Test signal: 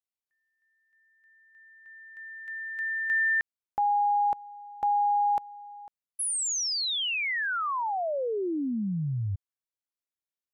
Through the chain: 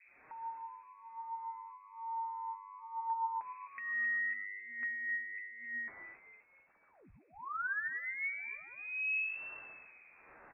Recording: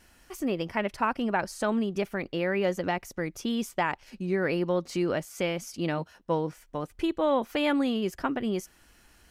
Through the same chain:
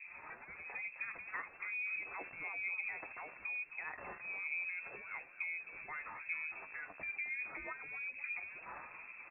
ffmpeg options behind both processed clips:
-filter_complex "[0:a]aeval=exprs='val(0)+0.5*0.0178*sgn(val(0))':c=same,highpass=120,acompressor=threshold=-34dB:ratio=6:attack=2.5:release=110:knee=6:detection=peak,flanger=delay=6:depth=5.7:regen=40:speed=0.24:shape=sinusoidal,acrossover=split=630[a][b];[a]aeval=exprs='val(0)*(1-1/2+1/2*cos(2*PI*1.1*n/s))':c=same[c];[b]aeval=exprs='val(0)*(1-1/2-1/2*cos(2*PI*1.1*n/s))':c=same[d];[c][d]amix=inputs=2:normalize=0,asplit=2[e][f];[f]asplit=4[g][h][i][j];[g]adelay=261,afreqshift=-100,volume=-11.5dB[k];[h]adelay=522,afreqshift=-200,volume=-19.2dB[l];[i]adelay=783,afreqshift=-300,volume=-27dB[m];[j]adelay=1044,afreqshift=-400,volume=-34.7dB[n];[k][l][m][n]amix=inputs=4:normalize=0[o];[e][o]amix=inputs=2:normalize=0,lowpass=f=2.3k:t=q:w=0.5098,lowpass=f=2.3k:t=q:w=0.6013,lowpass=f=2.3k:t=q:w=0.9,lowpass=f=2.3k:t=q:w=2.563,afreqshift=-2700,volume=3.5dB"

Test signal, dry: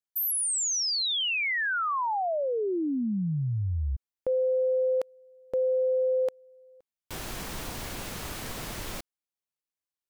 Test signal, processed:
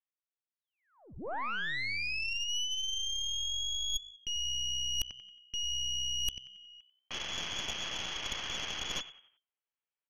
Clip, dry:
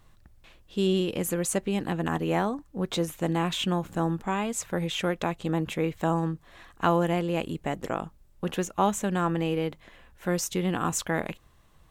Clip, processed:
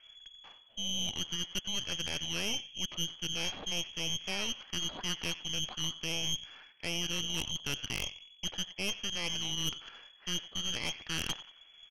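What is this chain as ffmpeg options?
-filter_complex "[0:a]areverse,acompressor=threshold=-36dB:ratio=10:attack=91:release=350:knee=1:detection=rms,areverse,asplit=5[a][b][c][d][e];[b]adelay=91,afreqshift=-64,volume=-14dB[f];[c]adelay=182,afreqshift=-128,volume=-21.7dB[g];[d]adelay=273,afreqshift=-192,volume=-29.5dB[h];[e]adelay=364,afreqshift=-256,volume=-37.2dB[i];[a][f][g][h][i]amix=inputs=5:normalize=0,lowpass=f=2.9k:t=q:w=0.5098,lowpass=f=2.9k:t=q:w=0.6013,lowpass=f=2.9k:t=q:w=0.9,lowpass=f=2.9k:t=q:w=2.563,afreqshift=-3400,aeval=exprs='0.133*(cos(1*acos(clip(val(0)/0.133,-1,1)))-cos(1*PI/2))+0.0376*(cos(5*acos(clip(val(0)/0.133,-1,1)))-cos(5*PI/2))+0.0531*(cos(8*acos(clip(val(0)/0.133,-1,1)))-cos(8*PI/2))':c=same,volume=-7dB"

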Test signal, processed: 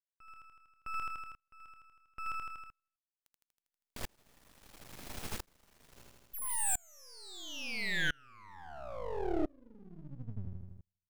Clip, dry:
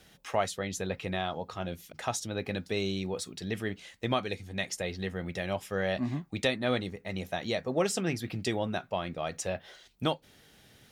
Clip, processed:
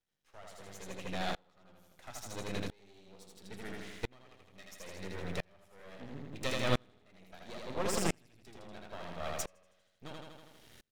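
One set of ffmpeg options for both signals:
-af "aecho=1:1:80|160|240|320|400|480|560|640:0.708|0.389|0.214|0.118|0.0648|0.0356|0.0196|0.0108,aeval=exprs='max(val(0),0)':c=same,aeval=exprs='val(0)*pow(10,-33*if(lt(mod(-0.74*n/s,1),2*abs(-0.74)/1000),1-mod(-0.74*n/s,1)/(2*abs(-0.74)/1000),(mod(-0.74*n/s,1)-2*abs(-0.74)/1000)/(1-2*abs(-0.74)/1000))/20)':c=same,volume=3dB"

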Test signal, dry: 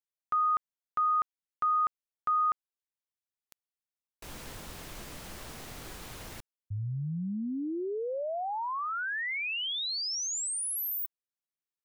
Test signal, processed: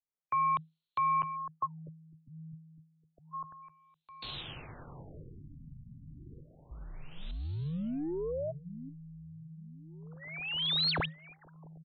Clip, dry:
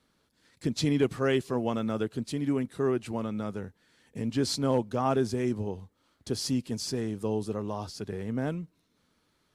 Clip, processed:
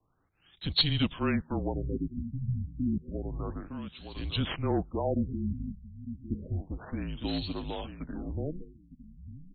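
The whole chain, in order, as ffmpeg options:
-filter_complex "[0:a]aeval=exprs='if(lt(val(0),0),0.708*val(0),val(0))':c=same,acrossover=split=200|540|1900[a][b][c][d];[a]acompressor=threshold=-46dB:ratio=6[e];[e][b][c][d]amix=inputs=4:normalize=0,aexciter=amount=8.8:drive=3.7:freq=3.1k,volume=13.5dB,asoftclip=hard,volume=-13.5dB,aecho=1:1:907|1814|2721:0.316|0.0696|0.0153,aeval=exprs='0.282*(cos(1*acos(clip(val(0)/0.282,-1,1)))-cos(1*PI/2))+0.00562*(cos(5*acos(clip(val(0)/0.282,-1,1)))-cos(5*PI/2))':c=same,afreqshift=-160,afftfilt=real='re*lt(b*sr/1024,250*pow(4500/250,0.5+0.5*sin(2*PI*0.3*pts/sr)))':imag='im*lt(b*sr/1024,250*pow(4500/250,0.5+0.5*sin(2*PI*0.3*pts/sr)))':win_size=1024:overlap=0.75,volume=-1dB"

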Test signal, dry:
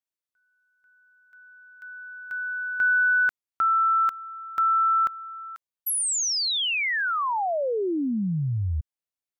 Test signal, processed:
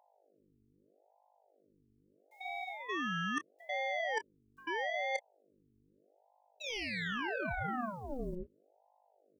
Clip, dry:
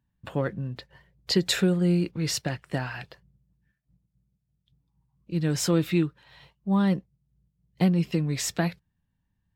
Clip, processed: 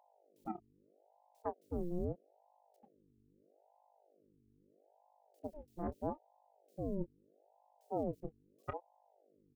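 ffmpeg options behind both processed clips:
-filter_complex "[0:a]acrossover=split=3700[a][b];[b]acompressor=threshold=-39dB:ratio=4:attack=1:release=60[c];[a][c]amix=inputs=2:normalize=0,acrossover=split=180 3700:gain=0.141 1 0.158[d][e][f];[d][e][f]amix=inputs=3:normalize=0,afftfilt=real='re*gte(hypot(re,im),0.355)':imag='im*gte(hypot(re,im),0.355)':win_size=1024:overlap=0.75,acrusher=bits=10:mix=0:aa=0.000001,highpass=140,equalizer=f=350:w=2:g=-14,acrossover=split=2500[g][h];[g]adelay=90[i];[i][h]amix=inputs=2:normalize=0,areverse,acompressor=threshold=-32dB:ratio=6:attack=32:release=394:knee=1:detection=peak,areverse,aeval=exprs='val(0)+0.000708*(sin(2*PI*50*n/s)+sin(2*PI*2*50*n/s)/2+sin(2*PI*3*50*n/s)/3+sin(2*PI*4*50*n/s)/4+sin(2*PI*5*50*n/s)/5)':c=same,aeval=exprs='0.1*(cos(1*acos(clip(val(0)/0.1,-1,1)))-cos(1*PI/2))+0.0178*(cos(6*acos(clip(val(0)/0.1,-1,1)))-cos(6*PI/2))':c=same,asplit=2[j][k];[k]adelay=28,volume=-12.5dB[l];[j][l]amix=inputs=2:normalize=0,aeval=exprs='val(0)*sin(2*PI*480*n/s+480*0.65/0.78*sin(2*PI*0.78*n/s))':c=same,volume=-3dB"

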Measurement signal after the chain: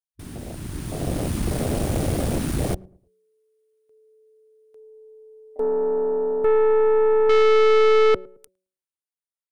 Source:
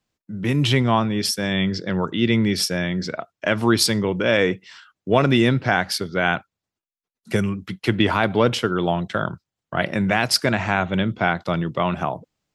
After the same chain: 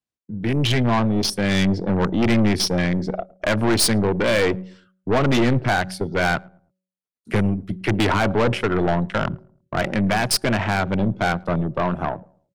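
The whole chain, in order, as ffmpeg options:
-filter_complex "[0:a]afwtdn=0.0398,highpass=43,equalizer=f=9.3k:t=o:w=0.2:g=11,bandreject=f=186.4:t=h:w=4,bandreject=f=372.8:t=h:w=4,bandreject=f=559.2:t=h:w=4,dynaudnorm=f=120:g=17:m=13dB,aeval=exprs='(tanh(7.08*val(0)+0.4)-tanh(0.4))/7.08':c=same,asplit=2[a][b];[b]adelay=109,lowpass=f=820:p=1,volume=-23dB,asplit=2[c][d];[d]adelay=109,lowpass=f=820:p=1,volume=0.39,asplit=2[e][f];[f]adelay=109,lowpass=f=820:p=1,volume=0.39[g];[c][e][g]amix=inputs=3:normalize=0[h];[a][h]amix=inputs=2:normalize=0,volume=2.5dB"

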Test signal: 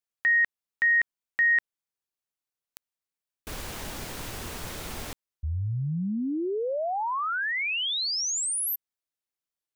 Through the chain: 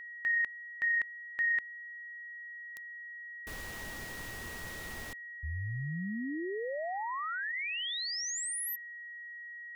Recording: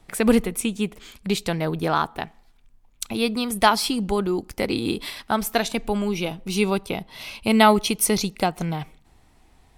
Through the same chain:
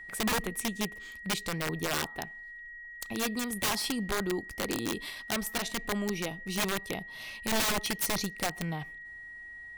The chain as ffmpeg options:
-af "aeval=exprs='(mod(5.62*val(0)+1,2)-1)/5.62':c=same,aeval=exprs='val(0)+0.0178*sin(2*PI*1900*n/s)':c=same,volume=-8dB"

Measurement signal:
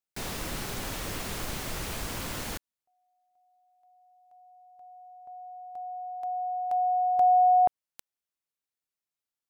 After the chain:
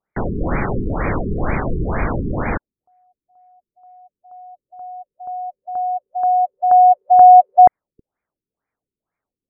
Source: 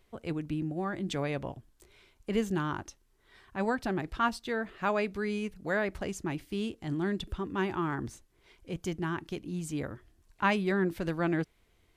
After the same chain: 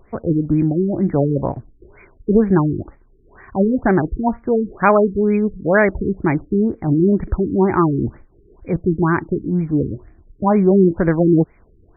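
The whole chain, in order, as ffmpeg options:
-af "alimiter=level_in=18dB:limit=-1dB:release=50:level=0:latency=1,afftfilt=real='re*lt(b*sr/1024,430*pow(2500/430,0.5+0.5*sin(2*PI*2.1*pts/sr)))':imag='im*lt(b*sr/1024,430*pow(2500/430,0.5+0.5*sin(2*PI*2.1*pts/sr)))':win_size=1024:overlap=0.75,volume=-1dB"

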